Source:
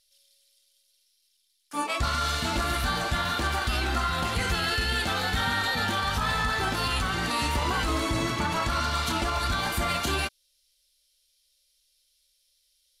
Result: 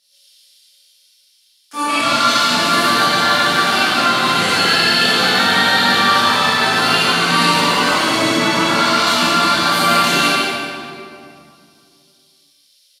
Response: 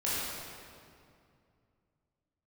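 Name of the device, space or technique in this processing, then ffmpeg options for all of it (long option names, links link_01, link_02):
PA in a hall: -filter_complex "[0:a]highpass=frequency=170:width=0.5412,highpass=frequency=170:width=1.3066,equalizer=frequency=3900:width_type=o:width=1.9:gain=4.5,aecho=1:1:145:0.501[link_01];[1:a]atrim=start_sample=2205[link_02];[link_01][link_02]afir=irnorm=-1:irlink=0,volume=3dB"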